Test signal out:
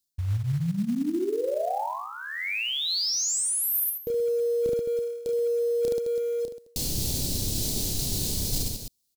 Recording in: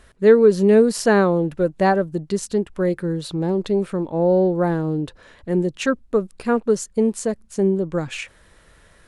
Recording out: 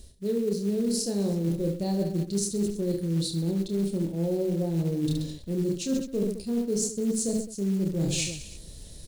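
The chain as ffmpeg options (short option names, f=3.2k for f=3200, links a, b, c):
-af "firequalizer=gain_entry='entry(170,0);entry(1300,-30);entry(2400,-16);entry(4100,2)':delay=0.05:min_phase=1,aecho=1:1:30|72|130.8|213.1|328.4:0.631|0.398|0.251|0.158|0.1,areverse,acompressor=threshold=-32dB:ratio=16,areverse,acrusher=bits=6:mode=log:mix=0:aa=0.000001,volume=8dB"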